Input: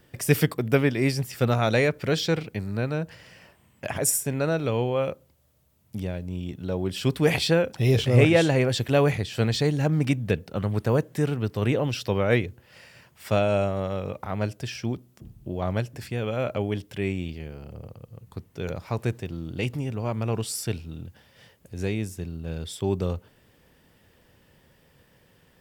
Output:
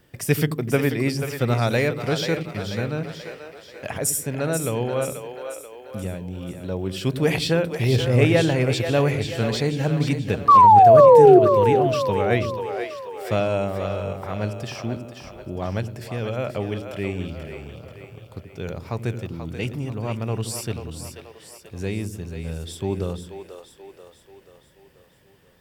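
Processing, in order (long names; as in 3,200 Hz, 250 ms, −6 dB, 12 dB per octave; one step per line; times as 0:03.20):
sound drawn into the spectrogram fall, 0:10.48–0:11.39, 350–1,200 Hz −10 dBFS
echo with a time of its own for lows and highs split 370 Hz, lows 84 ms, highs 485 ms, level −8 dB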